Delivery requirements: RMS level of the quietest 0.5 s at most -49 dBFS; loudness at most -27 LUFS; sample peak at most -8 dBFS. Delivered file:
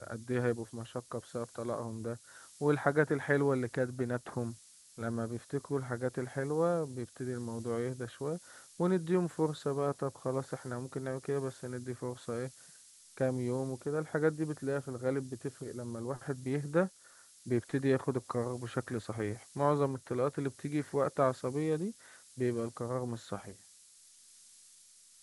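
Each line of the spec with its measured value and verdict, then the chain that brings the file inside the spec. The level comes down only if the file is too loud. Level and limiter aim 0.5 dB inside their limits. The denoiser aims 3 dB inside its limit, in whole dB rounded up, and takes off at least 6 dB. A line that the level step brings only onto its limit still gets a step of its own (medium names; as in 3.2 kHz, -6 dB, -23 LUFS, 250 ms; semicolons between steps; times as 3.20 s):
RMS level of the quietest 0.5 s -60 dBFS: pass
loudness -35.0 LUFS: pass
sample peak -12.5 dBFS: pass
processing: none needed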